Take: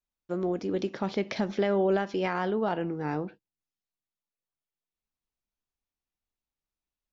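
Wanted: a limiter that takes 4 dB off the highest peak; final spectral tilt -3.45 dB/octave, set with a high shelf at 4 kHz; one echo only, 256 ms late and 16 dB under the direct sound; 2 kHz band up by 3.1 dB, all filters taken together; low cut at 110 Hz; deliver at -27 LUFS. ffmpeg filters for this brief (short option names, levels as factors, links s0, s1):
-af "highpass=110,equalizer=f=2000:t=o:g=5,highshelf=f=4000:g=-5.5,alimiter=limit=0.119:level=0:latency=1,aecho=1:1:256:0.158,volume=1.5"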